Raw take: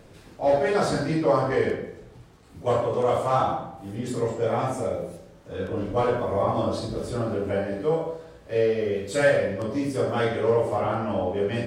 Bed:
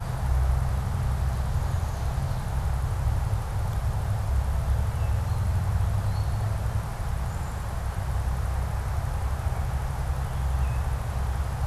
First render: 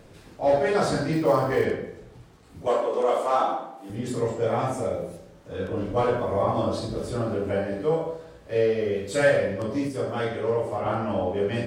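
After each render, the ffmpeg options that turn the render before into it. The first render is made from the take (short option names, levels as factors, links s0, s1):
-filter_complex "[0:a]asettb=1/sr,asplit=3[s0][s1][s2];[s0]atrim=end=1.134[s3];[s1]atrim=start=1.13:end=1.65,asetpts=PTS-STARTPTS,afade=t=in:d=0.004:c=qsin,afade=t=out:st=0.516:d=0.004:c=qsin,acrusher=bits=8:mode=log:mix=0:aa=0.000001[s4];[s2]atrim=start=1.646[s5];[s3][s4]acrossfade=d=0.004:c1=hsin:c2=qsin[s6];[s6][s5]acrossfade=d=0.004:c1=qsin:c2=hsin,asettb=1/sr,asplit=3[s7][s8][s9];[s7]atrim=end=2.674[s10];[s8]atrim=start=2.67:end=3.9,asetpts=PTS-STARTPTS,afade=t=in:d=0.004:c=qsin,afade=t=out:st=1.226:d=0.004:c=qsin,highpass=f=250:w=0.5412,highpass=f=250:w=1.3066[s11];[s9]atrim=start=3.896[s12];[s10][s11]acrossfade=d=0.004:c1=hsin:c2=qsin[s13];[s13][s12]acrossfade=d=0.004:c1=qsin:c2=hsin,asplit=3[s14][s15][s16];[s14]atrim=end=9.882[s17];[s15]atrim=start=9.878:end=10.862,asetpts=PTS-STARTPTS,volume=0.668[s18];[s16]atrim=start=10.858[s19];[s17][s18]acrossfade=d=0.004:c1=hsin:c2=hsin[s20];[s20][s19]acrossfade=d=0.004:c1=hsin:c2=hsin"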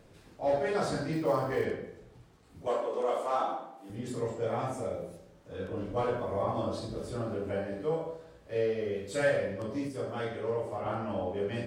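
-af "volume=0.422"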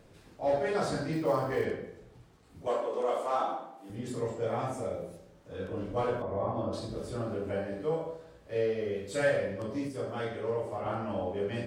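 -filter_complex "[0:a]asettb=1/sr,asplit=3[s0][s1][s2];[s0]atrim=end=6.224[s3];[s1]atrim=start=6.22:end=6.73,asetpts=PTS-STARTPTS,afade=t=in:d=0.004:c=qsin,afade=t=out:st=0.506:d=0.004:c=qsin,lowpass=f=1200:p=1[s4];[s2]atrim=start=6.726[s5];[s3][s4]acrossfade=d=0.004:c1=hsin:c2=qsin[s6];[s6][s5]acrossfade=d=0.004:c1=qsin:c2=hsin"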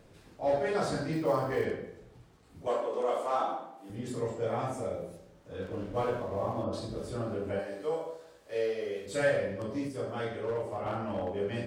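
-filter_complex "[0:a]asettb=1/sr,asplit=3[s0][s1][s2];[s0]atrim=end=5.624[s3];[s1]atrim=start=5.62:end=6.64,asetpts=PTS-STARTPTS,afade=t=in:d=0.004:c=qsin,afade=t=out:st=1.016:d=0.004:c=qsin,aeval=exprs='sgn(val(0))*max(abs(val(0))-0.00224,0)':c=same[s4];[s2]atrim=start=6.636[s5];[s3][s4]acrossfade=d=0.004:c1=hsin:c2=qsin[s6];[s6][s5]acrossfade=d=0.004:c1=qsin:c2=hsin,asettb=1/sr,asplit=3[s7][s8][s9];[s7]atrim=end=7.594[s10];[s8]atrim=start=7.59:end=9.06,asetpts=PTS-STARTPTS,afade=t=in:d=0.004:c=qsin,afade=t=out:st=1.466:d=0.004:c=qsin,bass=f=250:g=-13,treble=f=4000:g=6[s11];[s9]atrim=start=9.056[s12];[s10][s11]acrossfade=d=0.004:c1=hsin:c2=qsin[s13];[s13][s12]acrossfade=d=0.004:c1=qsin:c2=hsin,asettb=1/sr,asplit=3[s14][s15][s16];[s14]atrim=end=10.344[s17];[s15]atrim=start=10.34:end=11.32,asetpts=PTS-STARTPTS,afade=t=in:d=0.004:c=qsin,afade=t=out:st=0.976:d=0.004:c=qsin,asoftclip=type=hard:threshold=0.0422[s18];[s16]atrim=start=11.316[s19];[s17][s18]acrossfade=d=0.004:c1=hsin:c2=qsin[s20];[s20][s19]acrossfade=d=0.004:c1=qsin:c2=hsin"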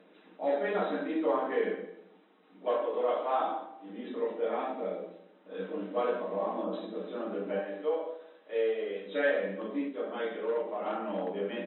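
-af "afftfilt=real='re*between(b*sr/4096,180,4000)':imag='im*between(b*sr/4096,180,4000)':win_size=4096:overlap=0.75,aecho=1:1:6.5:0.37"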